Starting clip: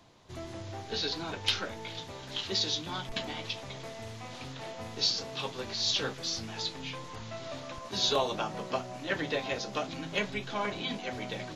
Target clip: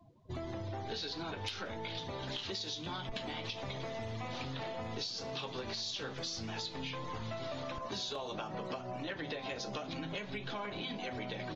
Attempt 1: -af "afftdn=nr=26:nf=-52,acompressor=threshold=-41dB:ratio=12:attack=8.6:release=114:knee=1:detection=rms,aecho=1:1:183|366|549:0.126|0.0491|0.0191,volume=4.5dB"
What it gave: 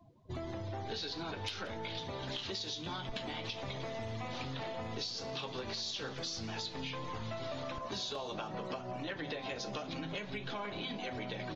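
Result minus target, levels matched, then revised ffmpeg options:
echo-to-direct +12 dB
-af "afftdn=nr=26:nf=-52,acompressor=threshold=-41dB:ratio=12:attack=8.6:release=114:knee=1:detection=rms,aecho=1:1:183|366:0.0316|0.0123,volume=4.5dB"

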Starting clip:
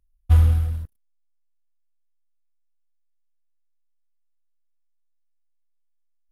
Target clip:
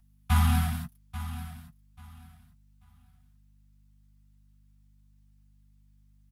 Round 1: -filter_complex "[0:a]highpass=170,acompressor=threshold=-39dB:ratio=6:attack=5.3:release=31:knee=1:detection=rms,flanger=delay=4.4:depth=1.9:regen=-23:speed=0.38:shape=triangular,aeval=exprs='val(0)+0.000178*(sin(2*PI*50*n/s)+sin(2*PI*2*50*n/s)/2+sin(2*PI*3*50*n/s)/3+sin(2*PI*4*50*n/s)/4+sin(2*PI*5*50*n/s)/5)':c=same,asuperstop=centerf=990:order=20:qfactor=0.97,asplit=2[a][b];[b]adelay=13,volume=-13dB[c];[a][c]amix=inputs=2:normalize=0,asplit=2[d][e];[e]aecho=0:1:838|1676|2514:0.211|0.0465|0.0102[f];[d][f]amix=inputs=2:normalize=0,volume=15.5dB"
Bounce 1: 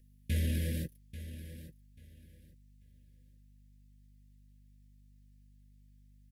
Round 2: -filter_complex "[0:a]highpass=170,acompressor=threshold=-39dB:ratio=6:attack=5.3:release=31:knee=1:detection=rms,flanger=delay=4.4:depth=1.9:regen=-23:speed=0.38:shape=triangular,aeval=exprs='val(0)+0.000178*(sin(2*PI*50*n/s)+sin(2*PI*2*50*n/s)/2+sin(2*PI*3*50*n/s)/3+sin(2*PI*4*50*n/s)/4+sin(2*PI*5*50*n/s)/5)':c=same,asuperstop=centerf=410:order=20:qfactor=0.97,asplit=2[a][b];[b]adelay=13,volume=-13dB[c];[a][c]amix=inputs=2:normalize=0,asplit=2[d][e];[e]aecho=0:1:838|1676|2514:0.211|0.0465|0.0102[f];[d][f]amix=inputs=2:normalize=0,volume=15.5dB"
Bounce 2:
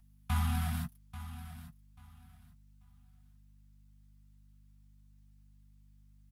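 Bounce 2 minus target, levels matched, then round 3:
compressor: peak gain reduction +8.5 dB
-filter_complex "[0:a]highpass=170,acompressor=threshold=-29dB:ratio=6:attack=5.3:release=31:knee=1:detection=rms,flanger=delay=4.4:depth=1.9:regen=-23:speed=0.38:shape=triangular,aeval=exprs='val(0)+0.000178*(sin(2*PI*50*n/s)+sin(2*PI*2*50*n/s)/2+sin(2*PI*3*50*n/s)/3+sin(2*PI*4*50*n/s)/4+sin(2*PI*5*50*n/s)/5)':c=same,asuperstop=centerf=410:order=20:qfactor=0.97,asplit=2[a][b];[b]adelay=13,volume=-13dB[c];[a][c]amix=inputs=2:normalize=0,asplit=2[d][e];[e]aecho=0:1:838|1676|2514:0.211|0.0465|0.0102[f];[d][f]amix=inputs=2:normalize=0,volume=15.5dB"

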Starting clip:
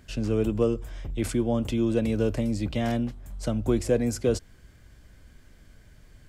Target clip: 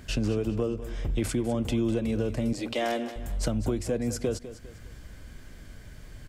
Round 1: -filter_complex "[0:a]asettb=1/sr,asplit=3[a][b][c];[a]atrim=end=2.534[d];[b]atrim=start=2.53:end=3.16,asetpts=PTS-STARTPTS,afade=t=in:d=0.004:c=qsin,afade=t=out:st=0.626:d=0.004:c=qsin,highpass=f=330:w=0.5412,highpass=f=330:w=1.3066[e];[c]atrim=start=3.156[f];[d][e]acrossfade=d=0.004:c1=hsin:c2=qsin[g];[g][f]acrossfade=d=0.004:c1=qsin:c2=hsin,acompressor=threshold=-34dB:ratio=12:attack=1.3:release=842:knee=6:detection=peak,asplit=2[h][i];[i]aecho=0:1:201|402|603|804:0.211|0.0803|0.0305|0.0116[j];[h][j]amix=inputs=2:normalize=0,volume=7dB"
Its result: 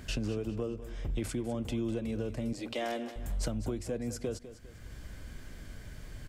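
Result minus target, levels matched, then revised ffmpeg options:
compressor: peak gain reduction +7 dB
-filter_complex "[0:a]asettb=1/sr,asplit=3[a][b][c];[a]atrim=end=2.534[d];[b]atrim=start=2.53:end=3.16,asetpts=PTS-STARTPTS,afade=t=in:d=0.004:c=qsin,afade=t=out:st=0.626:d=0.004:c=qsin,highpass=f=330:w=0.5412,highpass=f=330:w=1.3066[e];[c]atrim=start=3.156[f];[d][e]acrossfade=d=0.004:c1=hsin:c2=qsin[g];[g][f]acrossfade=d=0.004:c1=qsin:c2=hsin,acompressor=threshold=-26.5dB:ratio=12:attack=1.3:release=842:knee=6:detection=peak,asplit=2[h][i];[i]aecho=0:1:201|402|603|804:0.211|0.0803|0.0305|0.0116[j];[h][j]amix=inputs=2:normalize=0,volume=7dB"

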